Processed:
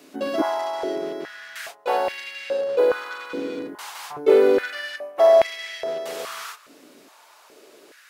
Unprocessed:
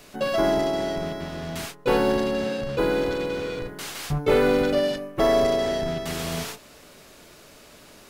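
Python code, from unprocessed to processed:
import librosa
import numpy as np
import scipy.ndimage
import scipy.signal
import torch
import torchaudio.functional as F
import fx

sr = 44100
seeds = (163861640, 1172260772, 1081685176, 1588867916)

y = fx.filter_held_highpass(x, sr, hz=2.4, low_hz=280.0, high_hz=2200.0)
y = y * librosa.db_to_amplitude(-4.0)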